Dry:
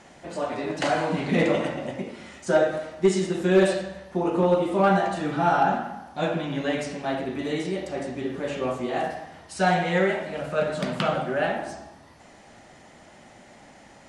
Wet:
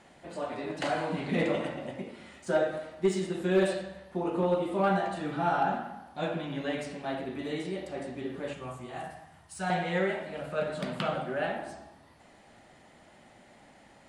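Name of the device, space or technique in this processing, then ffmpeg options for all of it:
exciter from parts: -filter_complex "[0:a]asplit=2[link_01][link_02];[link_02]highpass=frequency=4900:width=0.5412,highpass=frequency=4900:width=1.3066,asoftclip=type=tanh:threshold=-36dB,highpass=2600,volume=-5.5dB[link_03];[link_01][link_03]amix=inputs=2:normalize=0,asettb=1/sr,asplit=3[link_04][link_05][link_06];[link_04]atrim=end=8.534[link_07];[link_05]atrim=start=8.53:end=9.7,asetpts=PTS-STARTPTS,afade=type=in:duration=0.004:curve=qsin,afade=type=out:start_time=1.166:duration=0.004:curve=qsin,equalizer=frequency=125:width_type=o:width=1:gain=4,equalizer=frequency=250:width_type=o:width=1:gain=-7,equalizer=frequency=500:width_type=o:width=1:gain=-10,equalizer=frequency=2000:width_type=o:width=1:gain=-4,equalizer=frequency=4000:width_type=o:width=1:gain=-6,equalizer=frequency=8000:width_type=o:width=1:gain=4[link_08];[link_06]atrim=start=9.696[link_09];[link_07][link_08]acrossfade=duration=0.004:curve1=hsin:curve2=qsin[link_10];[link_10][link_09]acrossfade=duration=0.004:curve1=qsin:curve2=hsin,volume=-6.5dB"

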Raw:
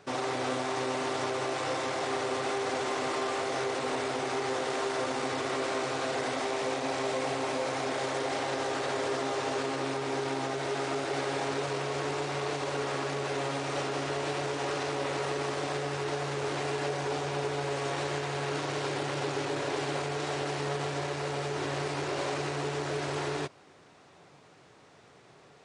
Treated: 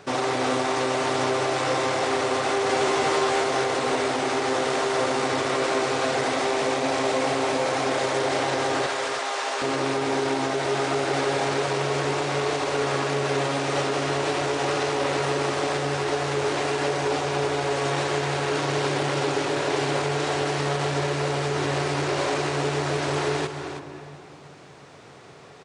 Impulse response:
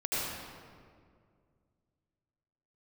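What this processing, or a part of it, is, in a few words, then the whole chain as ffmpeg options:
ducked reverb: -filter_complex "[0:a]asplit=3[link_01][link_02][link_03];[1:a]atrim=start_sample=2205[link_04];[link_02][link_04]afir=irnorm=-1:irlink=0[link_05];[link_03]apad=whole_len=1130928[link_06];[link_05][link_06]sidechaincompress=threshold=-57dB:ratio=8:attack=16:release=120,volume=-9.5dB[link_07];[link_01][link_07]amix=inputs=2:normalize=0,asettb=1/sr,asplit=3[link_08][link_09][link_10];[link_08]atrim=end=2.684[link_11];[link_09]atrim=start=2.68:end=3.44,asetpts=PTS-STARTPTS,afade=type=in:duration=0.004:curve=qsin,afade=type=out:start_time=0.756:duration=0.004:curve=qsin,asplit=2[link_12][link_13];[link_13]adelay=13,volume=-3.5dB[link_14];[link_12][link_14]amix=inputs=2:normalize=0,atrim=end_sample=33516[link_15];[link_10]atrim=start=3.436[link_16];[link_11][link_15]acrossfade=duration=0.004:curve1=hsin:curve2=qsin[link_17];[link_17][link_16]acrossfade=duration=0.004:curve1=qsin:curve2=hsin,asettb=1/sr,asplit=3[link_18][link_19][link_20];[link_18]atrim=end=8.864[link_21];[link_19]atrim=start=8.86:end=9.62,asetpts=PTS-STARTPTS,afade=type=in:duration=0.004:curve=qsin,afade=type=out:start_time=0.756:duration=0.004:curve=qsin,highpass=730[link_22];[link_20]atrim=start=9.616[link_23];[link_21][link_22]acrossfade=duration=0.004:curve1=hsin:curve2=qsin[link_24];[link_24][link_23]acrossfade=duration=0.004:curve1=qsin:curve2=hsin,aecho=1:1:322:0.316,volume=7dB"

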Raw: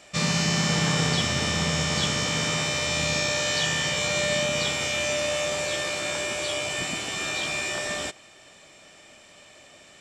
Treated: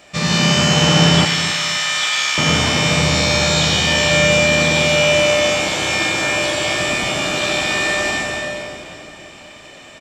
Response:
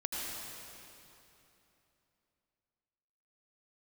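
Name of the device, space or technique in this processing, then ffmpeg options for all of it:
swimming-pool hall: -filter_complex "[1:a]atrim=start_sample=2205[link_01];[0:a][link_01]afir=irnorm=-1:irlink=0,highshelf=frequency=5300:gain=-7,asettb=1/sr,asplit=3[link_02][link_03][link_04];[link_02]atrim=end=1.254[link_05];[link_03]atrim=start=1.25:end=2.38,asetpts=PTS-STARTPTS,afade=type=in:duration=0.004:curve=qsin,afade=type=out:start_time=1.126:duration=0.004:curve=qsin,highpass=1400[link_06];[link_04]atrim=start=2.376[link_07];[link_05][link_06]acrossfade=duration=0.004:curve1=hsin:curve2=qsin[link_08];[link_08][link_07]acrossfade=duration=0.004:curve1=qsin:curve2=hsin,aemphasis=mode=production:type=50kf,equalizer=frequency=10000:width_type=o:width=1.6:gain=-10,asplit=2[link_09][link_10];[link_10]adelay=266,lowpass=frequency=2000:poles=1,volume=-11dB,asplit=2[link_11][link_12];[link_12]adelay=266,lowpass=frequency=2000:poles=1,volume=0.34,asplit=2[link_13][link_14];[link_14]adelay=266,lowpass=frequency=2000:poles=1,volume=0.34,asplit=2[link_15][link_16];[link_16]adelay=266,lowpass=frequency=2000:poles=1,volume=0.34[link_17];[link_09][link_11][link_13][link_15][link_17]amix=inputs=5:normalize=0,volume=7.5dB"

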